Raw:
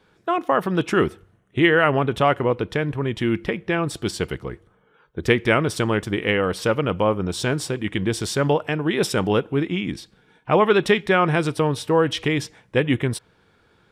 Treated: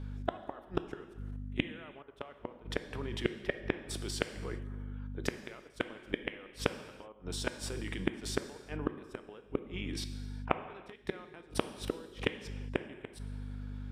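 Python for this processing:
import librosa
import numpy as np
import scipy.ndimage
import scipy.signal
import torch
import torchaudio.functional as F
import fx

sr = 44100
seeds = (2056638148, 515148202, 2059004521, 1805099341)

y = scipy.signal.sosfilt(scipy.signal.butter(2, 250.0, 'highpass', fs=sr, output='sos'), x)
y = fx.level_steps(y, sr, step_db=22)
y = fx.add_hum(y, sr, base_hz=50, snr_db=16)
y = fx.gate_flip(y, sr, shuts_db=-19.0, range_db=-32)
y = fx.rev_gated(y, sr, seeds[0], gate_ms=430, shape='falling', drr_db=9.5)
y = y * librosa.db_to_amplitude(3.5)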